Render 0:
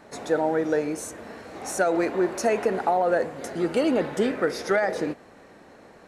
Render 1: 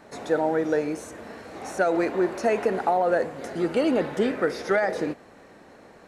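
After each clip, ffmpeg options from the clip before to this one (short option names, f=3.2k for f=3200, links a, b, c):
-filter_complex "[0:a]acrossover=split=4200[a][b];[b]acompressor=threshold=-44dB:ratio=4:attack=1:release=60[c];[a][c]amix=inputs=2:normalize=0"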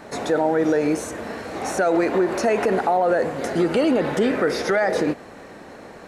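-af "alimiter=limit=-20.5dB:level=0:latency=1:release=71,volume=9dB"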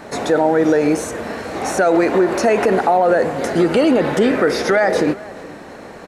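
-filter_complex "[0:a]asplit=2[a][b];[b]adelay=425.7,volume=-20dB,highshelf=f=4k:g=-9.58[c];[a][c]amix=inputs=2:normalize=0,volume=5dB"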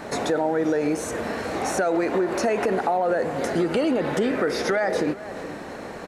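-af "acompressor=threshold=-26dB:ratio=2"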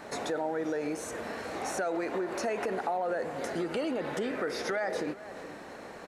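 -af "lowshelf=f=340:g=-5.5,volume=-7.5dB"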